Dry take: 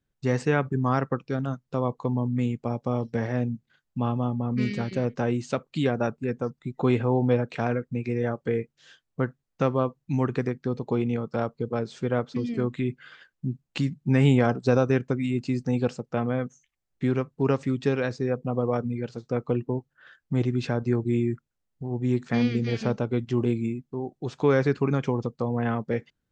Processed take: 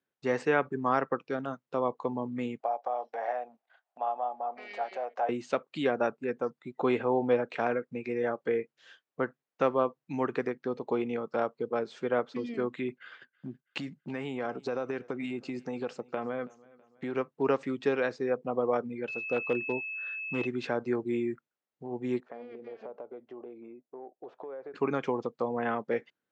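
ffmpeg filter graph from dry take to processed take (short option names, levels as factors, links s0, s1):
-filter_complex "[0:a]asettb=1/sr,asplit=3[s0][s1][s2];[s0]atrim=end=2.604[s3];[s1]atrim=start=2.6:end=5.29,asetpts=PTS-STARTPTS,afade=t=in:d=0.004:c=qsin,afade=t=out:st=2.686:d=0.004:c=qsin,highshelf=f=4200:g=-6.5,acompressor=threshold=0.0398:ratio=6:attack=3.2:release=140:knee=1:detection=peak,highpass=f=710:t=q:w=6.9[s4];[s2]atrim=start=5.286[s5];[s3][s4]acrossfade=d=0.004:c1=hsin:c2=qsin[s6];[s6][s5]acrossfade=d=0.004:c1=qsin:c2=hsin,asettb=1/sr,asplit=3[s7][s8][s9];[s7]atrim=end=12.894[s10];[s8]atrim=start=12.89:end=17.15,asetpts=PTS-STARTPTS,afade=t=in:d=0.004:c=qsin,afade=t=out:st=4.256:d=0.004:c=qsin,agate=range=0.224:threshold=0.00224:ratio=16:release=100:detection=peak,acompressor=threshold=0.0708:ratio=12:attack=3.2:release=140:knee=1:detection=peak,aecho=1:1:326|652|978:0.0668|0.0321|0.0154,atrim=end_sample=187866[s11];[s9]atrim=start=17.146[s12];[s10][s11]acrossfade=d=0.004:c1=hsin:c2=qsin[s13];[s13][s12]acrossfade=d=0.004:c1=qsin:c2=hsin,asettb=1/sr,asplit=3[s14][s15][s16];[s14]atrim=end=19.084[s17];[s15]atrim=start=19.08:end=20.47,asetpts=PTS-STARTPTS,afade=t=in:d=0.004:c=qsin,afade=t=out:st=1.386:d=0.004:c=qsin,aeval=exprs='val(0)+0.0224*sin(2*PI*2600*n/s)':c=same,asoftclip=type=hard:threshold=0.15[s18];[s16]atrim=start=20.466[s19];[s17][s18]acrossfade=d=0.004:c1=hsin:c2=qsin[s20];[s20][s19]acrossfade=d=0.004:c1=qsin:c2=hsin,asettb=1/sr,asplit=3[s21][s22][s23];[s21]atrim=end=22.204[s24];[s22]atrim=start=22.2:end=24.74,asetpts=PTS-STARTPTS,afade=t=in:d=0.004:c=qsin,afade=t=out:st=2.536:d=0.004:c=qsin,bandpass=f=600:t=q:w=1.9,acompressor=threshold=0.0158:ratio=12:attack=3.2:release=140:knee=1:detection=peak[s25];[s23]atrim=start=24.736[s26];[s24][s25]acrossfade=d=0.004:c1=hsin:c2=qsin[s27];[s27][s26]acrossfade=d=0.004:c1=qsin:c2=hsin,highpass=160,bass=f=250:g=-13,treble=f=4000:g=-10"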